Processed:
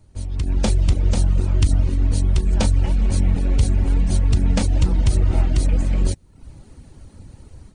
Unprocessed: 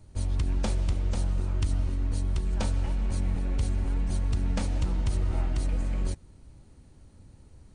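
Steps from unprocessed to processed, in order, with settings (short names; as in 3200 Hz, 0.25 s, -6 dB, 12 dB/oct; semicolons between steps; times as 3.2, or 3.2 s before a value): reverb removal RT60 0.6 s; dynamic EQ 1200 Hz, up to -5 dB, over -55 dBFS, Q 0.92; AGC gain up to 12 dB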